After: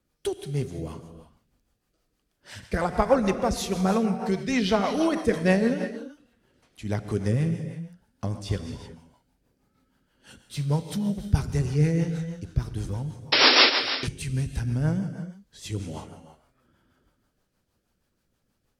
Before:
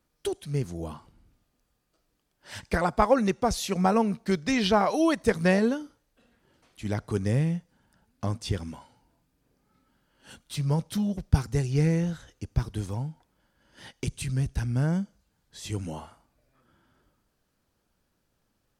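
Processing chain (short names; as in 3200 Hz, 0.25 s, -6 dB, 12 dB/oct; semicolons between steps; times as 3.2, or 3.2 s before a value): painted sound noise, 13.32–13.7, 240–5600 Hz -16 dBFS; non-linear reverb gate 0.4 s flat, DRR 7 dB; rotary speaker horn 6.3 Hz; gain +1.5 dB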